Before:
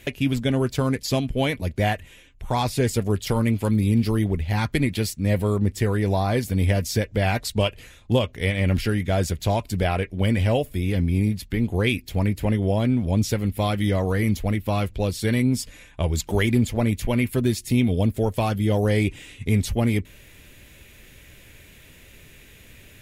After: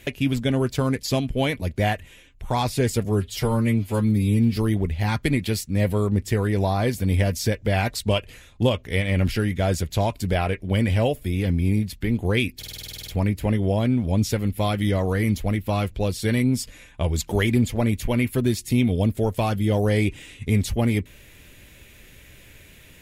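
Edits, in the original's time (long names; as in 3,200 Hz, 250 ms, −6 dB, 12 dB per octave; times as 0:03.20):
0:03.05–0:04.06: time-stretch 1.5×
0:12.07: stutter 0.05 s, 11 plays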